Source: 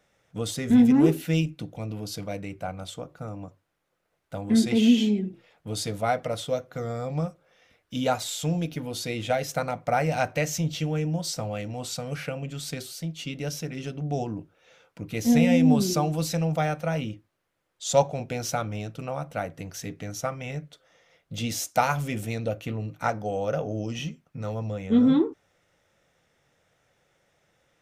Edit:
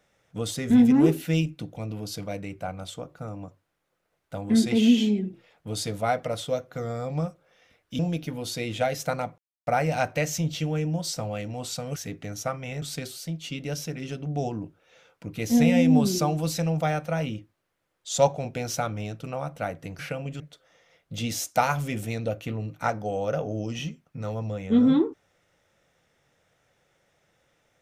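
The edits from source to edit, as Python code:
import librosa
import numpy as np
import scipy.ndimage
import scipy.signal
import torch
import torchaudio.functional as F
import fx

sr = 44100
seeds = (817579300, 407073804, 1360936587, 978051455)

y = fx.edit(x, sr, fx.cut(start_s=7.99, length_s=0.49),
    fx.insert_silence(at_s=9.87, length_s=0.29),
    fx.swap(start_s=12.16, length_s=0.41, other_s=19.74, other_length_s=0.86), tone=tone)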